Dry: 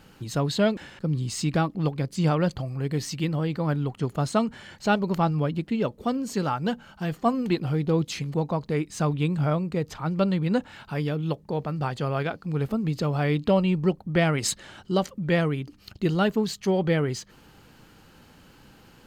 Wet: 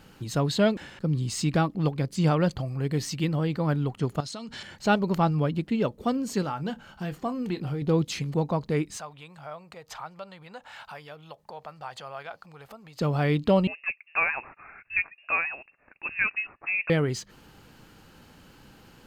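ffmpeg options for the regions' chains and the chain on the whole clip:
-filter_complex "[0:a]asettb=1/sr,asplit=3[s0][s1][s2];[s0]atrim=end=4.204[s3];[s1]atrim=start=4.2:end=4.63,asetpts=PTS-STARTPTS,afade=t=in:d=0.004:c=qsin,afade=t=out:st=0.426:d=0.004:c=qsin,equalizer=f=4600:t=o:w=1.6:g=14,acompressor=threshold=0.02:ratio=12:attack=3.2:release=140:knee=1:detection=peak[s4];[s2]atrim=start=4.626[s5];[s3][s4]acrossfade=d=0.004:c1=hsin:c2=qsin[s6];[s6][s5]acrossfade=d=0.004:c1=qsin:c2=hsin,asettb=1/sr,asplit=3[s7][s8][s9];[s7]atrim=end=6.424[s10];[s8]atrim=start=6.42:end=7.82,asetpts=PTS-STARTPTS,afade=t=in:d=0.004:c=qsin,afade=t=out:st=1.396:d=0.004:c=qsin,acompressor=threshold=0.0282:ratio=2:attack=3.2:release=140:knee=1:detection=peak,asplit=2[s11][s12];[s12]adelay=28,volume=0.251[s13];[s11][s13]amix=inputs=2:normalize=0,atrim=end_sample=61740[s14];[s9]atrim=start=7.816[s15];[s10][s14]acrossfade=d=0.004:c1=hsin:c2=qsin[s16];[s16][s15]acrossfade=d=0.004:c1=qsin:c2=hsin,asettb=1/sr,asplit=3[s17][s18][s19];[s17]atrim=end=8.974[s20];[s18]atrim=start=8.97:end=13.01,asetpts=PTS-STARTPTS,afade=t=in:d=0.004:c=qsin,afade=t=out:st=4.036:d=0.004:c=qsin,acompressor=threshold=0.0178:ratio=3:attack=3.2:release=140:knee=1:detection=peak,lowshelf=f=470:t=q:w=1.5:g=-14[s21];[s19]atrim=start=13.006[s22];[s20][s21]acrossfade=d=0.004:c1=hsin:c2=qsin[s23];[s23][s22]acrossfade=d=0.004:c1=qsin:c2=hsin,asettb=1/sr,asplit=3[s24][s25][s26];[s24]atrim=end=13.674[s27];[s25]atrim=start=13.67:end=16.9,asetpts=PTS-STARTPTS,afade=t=in:d=0.004:c=qsin,afade=t=out:st=3.226:d=0.004:c=qsin,highpass=f=450:w=0.5412,highpass=f=450:w=1.3066,lowpass=f=2600:t=q:w=0.5098,lowpass=f=2600:t=q:w=0.6013,lowpass=f=2600:t=q:w=0.9,lowpass=f=2600:t=q:w=2.563,afreqshift=-3000[s28];[s26]atrim=start=16.896[s29];[s27][s28]acrossfade=d=0.004:c1=hsin:c2=qsin[s30];[s30][s29]acrossfade=d=0.004:c1=qsin:c2=hsin"

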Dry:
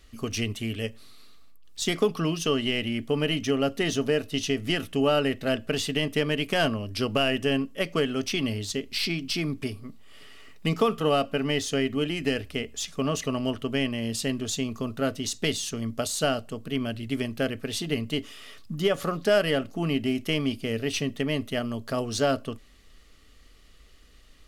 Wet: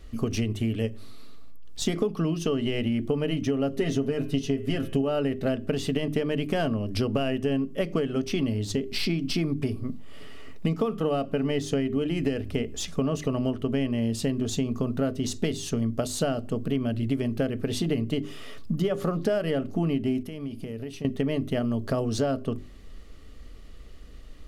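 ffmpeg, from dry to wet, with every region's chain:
-filter_complex "[0:a]asettb=1/sr,asplit=3[s0][s1][s2];[s0]atrim=end=3.724[s3];[s1]atrim=start=3.72:end=5.02,asetpts=PTS-STARTPTS,afade=t=in:d=0.004:c=qsin,afade=t=out:st=1.296:d=0.004:c=qsin,aecho=1:1:7.5:0.63,atrim=end_sample=57330,bandreject=f=106.2:t=h:w=4,bandreject=f=212.4:t=h:w=4,bandreject=f=318.6:t=h:w=4,bandreject=f=424.8:t=h:w=4,bandreject=f=531:t=h:w=4,bandreject=f=637.2:t=h:w=4,bandreject=f=743.4:t=h:w=4,bandreject=f=849.6:t=h:w=4,bandreject=f=955.8:t=h:w=4,bandreject=f=1062:t=h:w=4,bandreject=f=1168.2:t=h:w=4,bandreject=f=1274.4:t=h:w=4,bandreject=f=1380.6:t=h:w=4,bandreject=f=1486.8:t=h:w=4,bandreject=f=1593:t=h:w=4,bandreject=f=1699.2:t=h:w=4,bandreject=f=1805.4:t=h:w=4,bandreject=f=1911.6:t=h:w=4,bandreject=f=2017.8:t=h:w=4,bandreject=f=2124:t=h:w=4,bandreject=f=2230.2:t=h:w=4,bandreject=f=2336.4:t=h:w=4,bandreject=f=2442.6:t=h:w=4,bandreject=f=2548.8:t=h:w=4,bandreject=f=2655:t=h:w=4,bandreject=f=2761.2:t=h:w=4,bandreject=f=2867.4:t=h:w=4,bandreject=f=2973.6:t=h:w=4,bandreject=f=3079.8:t=h:w=4,bandreject=f=3186:t=h:w=4,bandreject=f=3292.2:t=h:w=4[s4];[s2]atrim=start=5.016[s5];[s3][s4]acrossfade=d=0.004:c1=hsin:c2=qsin[s6];[s6][s5]acrossfade=d=0.004:c1=qsin:c2=hsin,asettb=1/sr,asplit=3[s7][s8][s9];[s7]atrim=end=20.234[s10];[s8]atrim=start=20.23:end=21.05,asetpts=PTS-STARTPTS,afade=t=in:d=0.004:c=qsin,afade=t=out:st=0.816:d=0.004:c=qsin,agate=range=0.0224:threshold=0.00891:ratio=3:release=100:detection=peak,equalizer=f=11000:w=2.4:g=6.5,acompressor=threshold=0.01:ratio=10:attack=3.2:release=140:knee=1:detection=peak[s11];[s9]atrim=start=21.046[s12];[s10][s11]acrossfade=d=0.004:c1=hsin:c2=qsin[s13];[s13][s12]acrossfade=d=0.004:c1=qsin:c2=hsin,tiltshelf=f=910:g=6.5,bandreject=f=50:t=h:w=6,bandreject=f=100:t=h:w=6,bandreject=f=150:t=h:w=6,bandreject=f=200:t=h:w=6,bandreject=f=250:t=h:w=6,bandreject=f=300:t=h:w=6,bandreject=f=350:t=h:w=6,bandreject=f=400:t=h:w=6,acompressor=threshold=0.0398:ratio=6,volume=1.78"

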